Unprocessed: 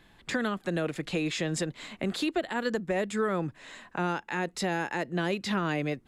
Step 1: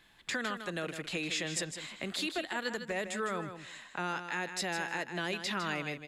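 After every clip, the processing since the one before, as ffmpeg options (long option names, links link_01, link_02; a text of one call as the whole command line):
ffmpeg -i in.wav -af "tiltshelf=frequency=940:gain=-5.5,aecho=1:1:156|312:0.355|0.0568,volume=-5dB" out.wav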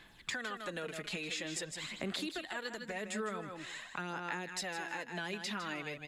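ffmpeg -i in.wav -af "acompressor=threshold=-41dB:ratio=3,aphaser=in_gain=1:out_gain=1:delay=4.8:decay=0.46:speed=0.47:type=sinusoidal,volume=1.5dB" out.wav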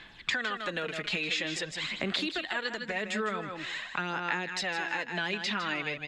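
ffmpeg -i in.wav -af "lowpass=3400,highshelf=frequency=2100:gain=10,volume=5dB" out.wav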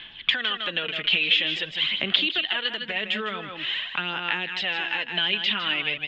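ffmpeg -i in.wav -af "lowpass=frequency=3100:width_type=q:width=7.6" out.wav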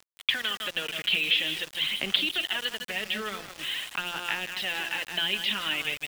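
ffmpeg -i in.wav -af "bandreject=frequency=174.7:width_type=h:width=4,bandreject=frequency=349.4:width_type=h:width=4,bandreject=frequency=524.1:width_type=h:width=4,bandreject=frequency=698.8:width_type=h:width=4,bandreject=frequency=873.5:width_type=h:width=4,bandreject=frequency=1048.2:width_type=h:width=4,bandreject=frequency=1222.9:width_type=h:width=4,bandreject=frequency=1397.6:width_type=h:width=4,bandreject=frequency=1572.3:width_type=h:width=4,bandreject=frequency=1747:width_type=h:width=4,bandreject=frequency=1921.7:width_type=h:width=4,bandreject=frequency=2096.4:width_type=h:width=4,bandreject=frequency=2271.1:width_type=h:width=4,bandreject=frequency=2445.8:width_type=h:width=4,aeval=exprs='val(0)*gte(abs(val(0)),0.0237)':channel_layout=same,volume=-3.5dB" out.wav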